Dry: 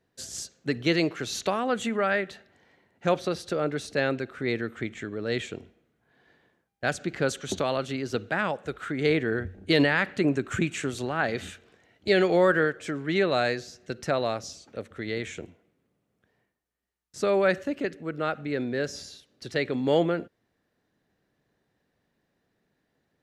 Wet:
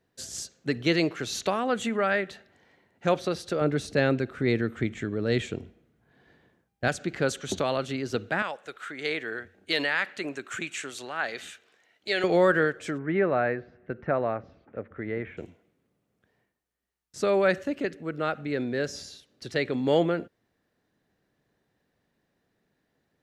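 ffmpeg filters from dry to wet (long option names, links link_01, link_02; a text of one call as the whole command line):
ffmpeg -i in.wav -filter_complex "[0:a]asettb=1/sr,asplit=3[link_01][link_02][link_03];[link_01]atrim=end=3.614[link_04];[link_02]atrim=start=3.61:end=6.88,asetpts=PTS-STARTPTS,afade=type=in:duration=0.004:curve=qsin,afade=type=out:start_time=3.266:duration=0.004:curve=qsin,lowshelf=frequency=310:gain=8[link_05];[link_03]atrim=start=6.876[link_06];[link_04][link_05]acrossfade=duration=0.004:curve1=hsin:curve2=qsin[link_07];[link_07][link_06]acrossfade=duration=0.004:curve1=qsin:curve2=hsin,asettb=1/sr,asplit=3[link_08][link_09][link_10];[link_08]atrim=end=8.424[link_11];[link_09]atrim=start=8.42:end=12.24,asetpts=PTS-STARTPTS,afade=type=in:duration=0.004:curve=qsin,afade=type=out:start_time=3.816:duration=0.004:curve=qsin,highpass=frequency=1100:poles=1[link_12];[link_10]atrim=start=12.236[link_13];[link_11][link_12]acrossfade=duration=0.004:curve1=hsin:curve2=qsin[link_14];[link_14][link_13]acrossfade=duration=0.004:curve1=qsin:curve2=hsin,asplit=3[link_15][link_16][link_17];[link_15]afade=type=out:start_time=12.97:duration=0.02[link_18];[link_16]lowpass=frequency=2000:width=0.5412,lowpass=frequency=2000:width=1.3066,afade=type=in:start_time=12.97:duration=0.02,afade=type=out:start_time=15.37:duration=0.02[link_19];[link_17]afade=type=in:start_time=15.37:duration=0.02[link_20];[link_18][link_19][link_20]amix=inputs=3:normalize=0" out.wav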